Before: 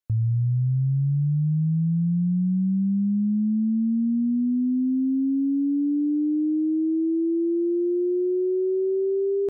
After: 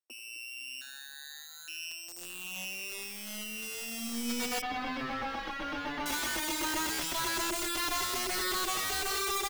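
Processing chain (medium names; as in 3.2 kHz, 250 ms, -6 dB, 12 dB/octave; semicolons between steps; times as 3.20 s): sorted samples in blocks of 16 samples; steep high-pass 250 Hz 96 dB/octave; 0.81–1.68 s: ring modulator 1.1 kHz; two-band feedback delay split 410 Hz, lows 254 ms, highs 86 ms, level -10 dB; integer overflow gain 23.5 dB; 4.61–6.06 s: distance through air 310 m; endless flanger 5.6 ms -0.95 Hz; trim -2 dB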